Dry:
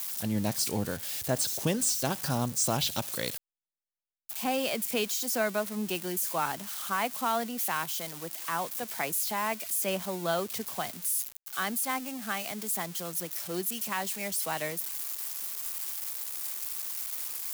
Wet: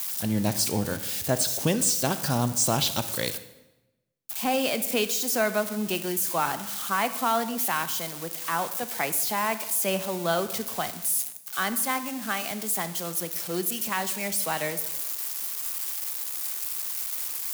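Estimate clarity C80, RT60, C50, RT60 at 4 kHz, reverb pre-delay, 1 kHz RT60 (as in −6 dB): 15.0 dB, 1.0 s, 13.0 dB, 0.85 s, 26 ms, 0.95 s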